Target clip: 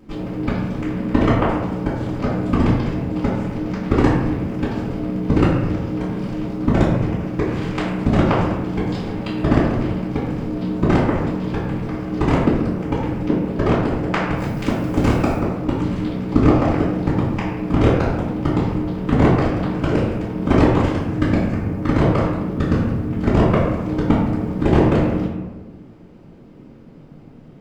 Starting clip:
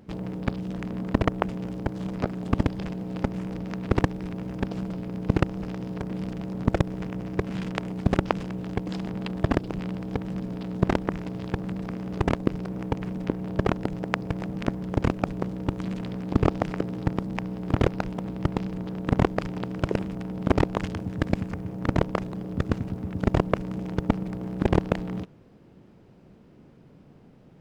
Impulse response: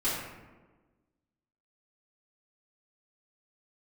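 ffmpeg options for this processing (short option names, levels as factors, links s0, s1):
-filter_complex "[0:a]asettb=1/sr,asplit=3[s0][s1][s2];[s0]atrim=end=14.364[s3];[s1]atrim=start=14.36:end=15.37,asetpts=PTS-STARTPTS,afade=t=in:d=0.004:c=qsin,afade=t=out:st=1.006:d=0.004:c=qsin,aemphasis=mode=production:type=50kf[s4];[s2]atrim=start=15.366[s5];[s3][s4]acrossfade=d=0.004:c1=hsin:c2=qsin[s6];[s6][s5]acrossfade=d=0.004:c1=qsin:c2=hsin[s7];[1:a]atrim=start_sample=2205[s8];[s7][s8]afir=irnorm=-1:irlink=0,volume=0.891"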